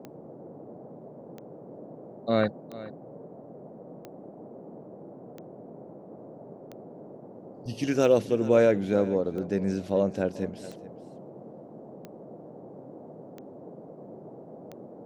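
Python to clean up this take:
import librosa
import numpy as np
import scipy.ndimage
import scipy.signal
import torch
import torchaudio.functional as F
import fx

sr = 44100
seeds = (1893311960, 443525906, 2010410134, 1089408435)

y = fx.fix_declick_ar(x, sr, threshold=10.0)
y = fx.noise_reduce(y, sr, print_start_s=7.15, print_end_s=7.65, reduce_db=26.0)
y = fx.fix_echo_inverse(y, sr, delay_ms=425, level_db=-17.5)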